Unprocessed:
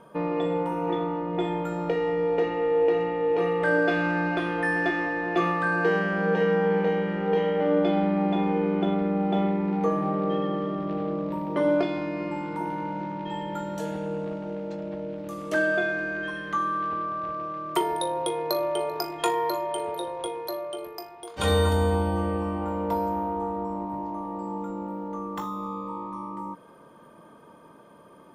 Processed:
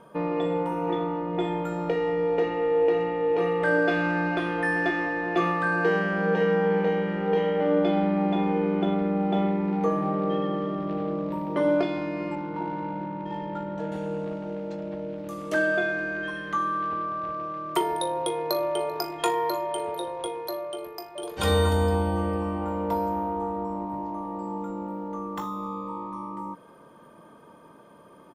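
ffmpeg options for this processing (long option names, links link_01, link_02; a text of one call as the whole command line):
ffmpeg -i in.wav -filter_complex "[0:a]asettb=1/sr,asplit=3[link_01][link_02][link_03];[link_01]atrim=end=12.354[link_04];[link_02]atrim=start=12.35:end=13.92,asetpts=PTS-STARTPTS,afade=type=in:duration=0.004:curve=qsin,afade=type=out:start_time=1.566:duration=0.004:curve=qsin,adynamicsmooth=sensitivity=2:basefreq=1600[link_05];[link_03]atrim=start=13.916[link_06];[link_04][link_05]acrossfade=duration=0.004:curve1=hsin:curve2=qsin[link_07];[link_07][link_06]acrossfade=duration=0.004:curve1=qsin:curve2=hsin,asplit=2[link_08][link_09];[link_09]afade=type=in:start_time=20.7:duration=0.01,afade=type=out:start_time=21.22:duration=0.01,aecho=0:1:450|900|1350:0.891251|0.17825|0.03565[link_10];[link_08][link_10]amix=inputs=2:normalize=0" out.wav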